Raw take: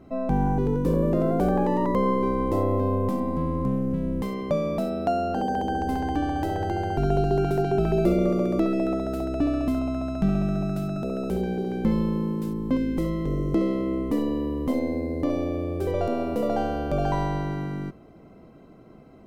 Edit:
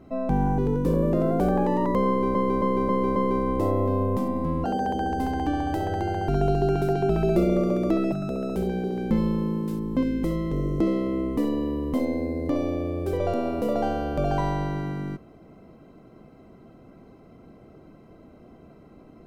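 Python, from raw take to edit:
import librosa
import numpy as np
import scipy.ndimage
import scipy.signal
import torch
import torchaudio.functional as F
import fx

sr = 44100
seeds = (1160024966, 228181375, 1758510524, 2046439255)

y = fx.edit(x, sr, fx.repeat(start_s=2.08, length_s=0.27, count=5),
    fx.cut(start_s=3.56, length_s=1.77),
    fx.cut(start_s=8.81, length_s=2.05), tone=tone)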